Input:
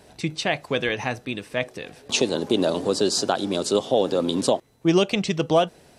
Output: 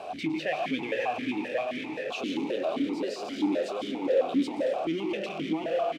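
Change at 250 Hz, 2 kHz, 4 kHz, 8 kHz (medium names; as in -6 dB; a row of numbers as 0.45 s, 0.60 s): -4.5 dB, -6.0 dB, -12.0 dB, -21.0 dB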